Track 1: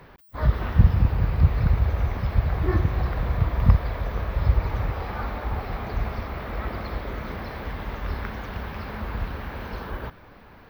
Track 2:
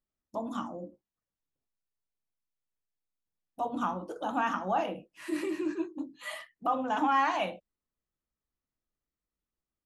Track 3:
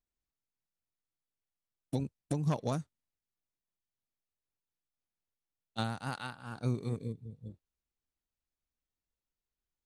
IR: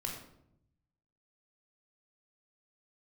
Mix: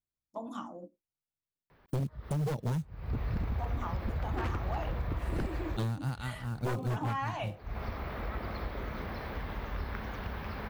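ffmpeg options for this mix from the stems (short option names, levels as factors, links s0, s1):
-filter_complex "[0:a]adelay=1700,volume=0.596[s0];[1:a]highpass=f=120:p=1,volume=0.631[s1];[2:a]equalizer=f=120:w=0.66:g=13.5,acrusher=bits=7:mode=log:mix=0:aa=0.000001,volume=0.944,asplit=2[s2][s3];[s3]apad=whole_len=546715[s4];[s0][s4]sidechaincompress=threshold=0.00112:ratio=4:attack=32:release=176[s5];[s5][s1][s2]amix=inputs=3:normalize=0,agate=range=0.316:threshold=0.00562:ratio=16:detection=peak,aeval=exprs='0.0944*(abs(mod(val(0)/0.0944+3,4)-2)-1)':c=same,acompressor=threshold=0.02:ratio=2"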